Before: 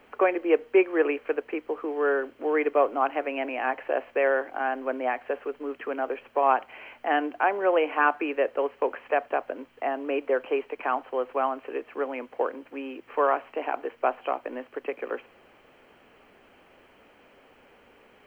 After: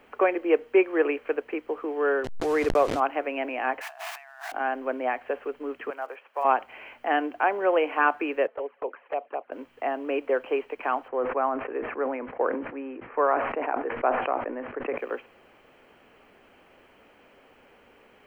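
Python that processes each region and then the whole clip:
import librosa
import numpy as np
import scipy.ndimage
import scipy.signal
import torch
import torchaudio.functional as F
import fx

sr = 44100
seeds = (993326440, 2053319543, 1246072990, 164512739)

y = fx.chain(x, sr, fx.delta_hold(step_db=-34.0),
    fx.air_absorb(metres=53.0),
    fx.pre_swell(db_per_s=33.0), at=(2.24, 3.0))
y = fx.chain(y, sr, fx.zero_step(step_db=-38.0),
    fx.brickwall_highpass(low_hz=630.0),
    fx.over_compress(threshold_db=-42.0, ratio=-1.0), at=(3.81, 4.52))
y = fx.chain(y, sr, fx.block_float(bits=7),
    fx.highpass(hz=790.0, slope=12),
    fx.high_shelf(hz=2600.0, db=-9.0), at=(5.9, 6.45))
y = fx.chain(y, sr, fx.highpass(hz=430.0, slope=12),
    fx.env_flanger(rest_ms=5.6, full_db=-23.0),
    fx.air_absorb(metres=500.0), at=(8.47, 9.52))
y = fx.chain(y, sr, fx.lowpass(hz=2100.0, slope=24),
    fx.sustainer(db_per_s=54.0), at=(11.08, 14.98))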